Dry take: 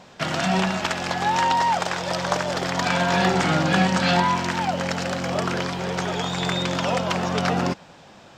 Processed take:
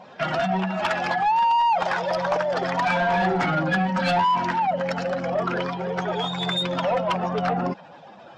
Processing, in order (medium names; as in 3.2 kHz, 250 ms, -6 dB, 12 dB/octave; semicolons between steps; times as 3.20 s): spectral contrast enhancement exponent 1.9; overdrive pedal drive 17 dB, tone 5.3 kHz, clips at -8.5 dBFS; trim -4.5 dB